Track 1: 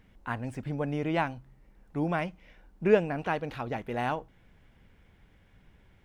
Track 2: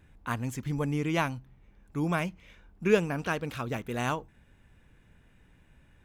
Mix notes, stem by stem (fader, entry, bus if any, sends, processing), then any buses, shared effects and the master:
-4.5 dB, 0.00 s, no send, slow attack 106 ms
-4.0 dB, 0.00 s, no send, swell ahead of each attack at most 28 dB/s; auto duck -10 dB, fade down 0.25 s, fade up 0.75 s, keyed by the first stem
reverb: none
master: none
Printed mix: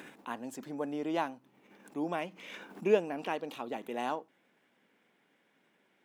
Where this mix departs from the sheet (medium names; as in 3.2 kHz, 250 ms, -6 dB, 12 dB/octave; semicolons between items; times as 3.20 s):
stem 1: missing slow attack 106 ms; master: extra high-pass 240 Hz 24 dB/octave